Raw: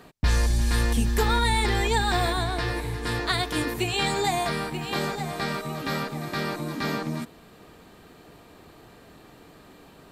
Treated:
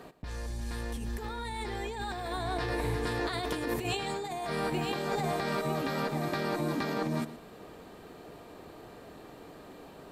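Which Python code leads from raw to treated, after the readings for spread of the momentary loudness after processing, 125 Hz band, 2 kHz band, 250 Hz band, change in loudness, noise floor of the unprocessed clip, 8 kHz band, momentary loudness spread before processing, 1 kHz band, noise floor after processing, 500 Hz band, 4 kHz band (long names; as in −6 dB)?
18 LU, −9.0 dB, −8.5 dB, −4.5 dB, −7.5 dB, −51 dBFS, −11.0 dB, 7 LU, −7.0 dB, −50 dBFS, −3.5 dB, −10.5 dB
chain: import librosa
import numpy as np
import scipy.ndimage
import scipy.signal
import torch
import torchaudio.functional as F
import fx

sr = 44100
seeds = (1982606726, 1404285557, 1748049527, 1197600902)

y = fx.peak_eq(x, sr, hz=530.0, db=6.5, octaves=2.1)
y = fx.over_compress(y, sr, threshold_db=-27.0, ratio=-1.0)
y = y + 10.0 ** (-15.5 / 20.0) * np.pad(y, (int(116 * sr / 1000.0), 0))[:len(y)]
y = y * librosa.db_to_amplitude(-6.5)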